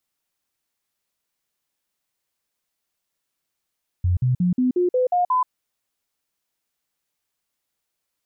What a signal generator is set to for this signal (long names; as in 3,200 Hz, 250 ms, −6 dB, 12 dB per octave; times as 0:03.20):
stepped sweep 89.3 Hz up, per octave 2, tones 8, 0.13 s, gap 0.05 s −16 dBFS